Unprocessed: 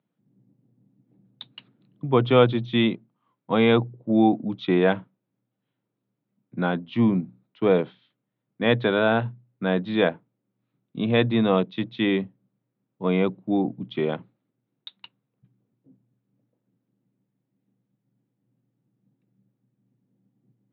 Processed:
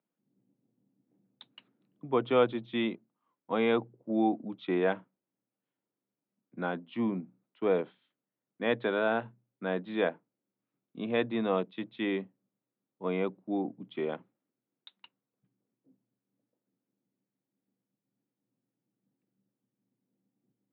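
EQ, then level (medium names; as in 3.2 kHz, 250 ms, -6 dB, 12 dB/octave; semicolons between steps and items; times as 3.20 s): band-pass 240–3000 Hz; -7.0 dB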